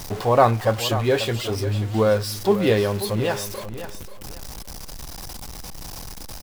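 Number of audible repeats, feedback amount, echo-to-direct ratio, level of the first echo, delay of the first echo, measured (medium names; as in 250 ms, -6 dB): 2, 24%, -11.5 dB, -12.0 dB, 536 ms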